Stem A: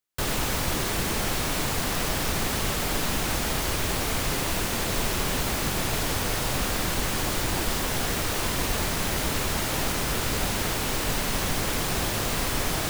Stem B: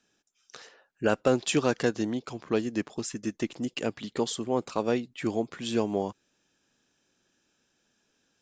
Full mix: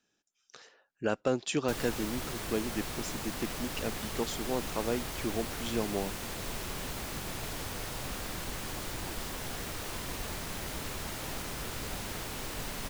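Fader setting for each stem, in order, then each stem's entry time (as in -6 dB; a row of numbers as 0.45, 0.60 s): -11.5, -5.5 dB; 1.50, 0.00 s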